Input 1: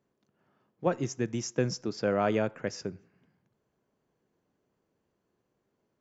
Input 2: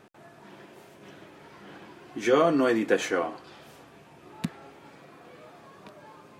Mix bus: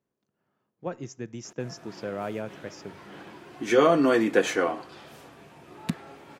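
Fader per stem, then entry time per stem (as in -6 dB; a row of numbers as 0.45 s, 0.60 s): -6.0 dB, +2.0 dB; 0.00 s, 1.45 s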